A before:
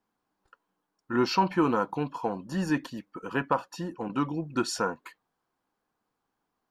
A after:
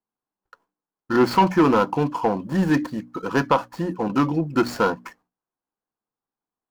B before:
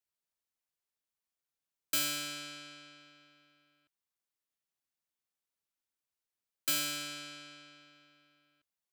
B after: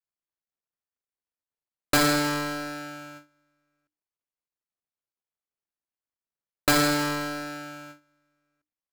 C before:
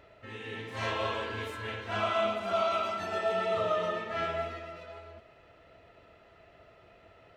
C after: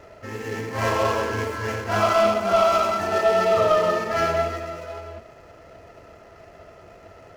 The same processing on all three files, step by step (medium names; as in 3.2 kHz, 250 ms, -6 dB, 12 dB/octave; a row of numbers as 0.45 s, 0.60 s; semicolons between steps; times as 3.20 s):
median filter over 15 samples; band-stop 3.7 kHz, Q 16; gate with hold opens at -57 dBFS; hum notches 60/120/180/240/300 Hz; saturation -19 dBFS; peak normalisation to -9 dBFS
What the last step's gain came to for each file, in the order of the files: +10.5 dB, +21.0 dB, +12.0 dB